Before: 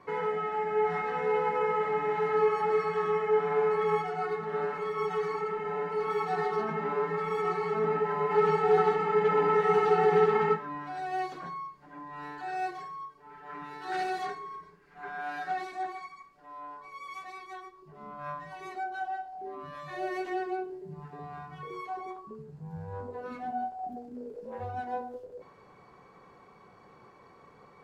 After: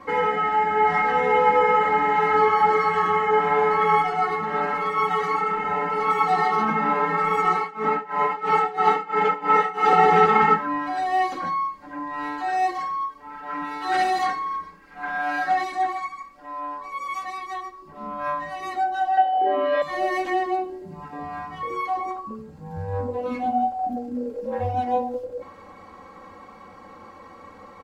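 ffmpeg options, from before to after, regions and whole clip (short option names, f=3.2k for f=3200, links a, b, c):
-filter_complex "[0:a]asettb=1/sr,asplit=3[a][b][c];[a]atrim=end=7.564[d];[b]atrim=start=7.56:end=9.93,asetpts=PTS-STARTPTS,afade=t=in:d=0.004:c=qsin,afade=t=out:st=2.366:d=0.004:c=qsin,tremolo=f=3:d=0.91,highpass=210[e];[c]atrim=start=9.926[f];[d][e]acrossfade=d=0.004:c1=hsin:c2=qsin[g];[g][f]acrossfade=d=0.004:c1=qsin:c2=hsin,asettb=1/sr,asplit=3[h][i][j];[h]atrim=end=19.174[k];[i]atrim=start=19.17:end=19.82,asetpts=PTS-STARTPTS,afade=t=in:d=0.004:c=qsin,afade=t=out:st=0.646:d=0.004:c=qsin,acontrast=66,highpass=f=280:w=0.5412,highpass=f=280:w=1.3066,equalizer=f=430:t=q:w=4:g=10,equalizer=f=620:t=q:w=4:g=10,equalizer=f=1.1k:t=q:w=4:g=-6,equalizer=f=1.8k:t=q:w=4:g=5,lowpass=f=3.9k:w=0.5412,lowpass=f=3.9k:w=1.3066,aeval=exprs='val(0)+0.001*sin(2*PI*3000*n/s)':c=same[l];[j]atrim=start=19.816[m];[k][l]acrossfade=d=0.004:c1=hsin:c2=qsin[n];[n][m]acrossfade=d=0.004:c1=qsin:c2=hsin,equalizer=f=90:w=6.5:g=10.5,aecho=1:1:3.7:0.99,volume=8dB"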